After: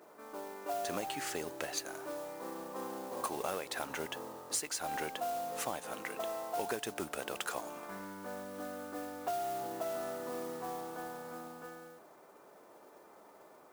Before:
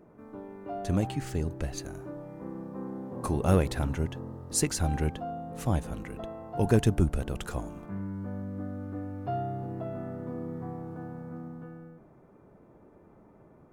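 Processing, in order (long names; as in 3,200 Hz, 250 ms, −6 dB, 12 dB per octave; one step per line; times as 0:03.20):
high-pass filter 620 Hz 12 dB per octave
downward compressor 12 to 1, threshold −39 dBFS, peak gain reduction 16 dB
noise that follows the level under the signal 13 dB
level +6 dB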